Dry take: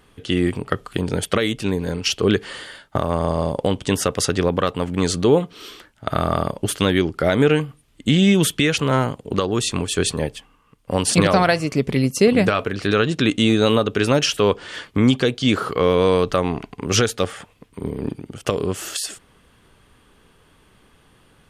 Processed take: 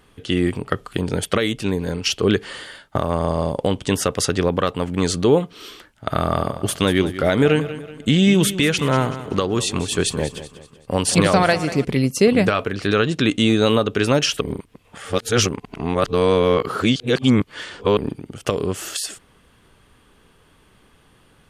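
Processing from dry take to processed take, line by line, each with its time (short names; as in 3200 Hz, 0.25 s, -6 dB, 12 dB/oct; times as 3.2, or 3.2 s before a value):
6.17–11.85 feedback echo 0.19 s, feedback 41%, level -13.5 dB
14.41–17.97 reverse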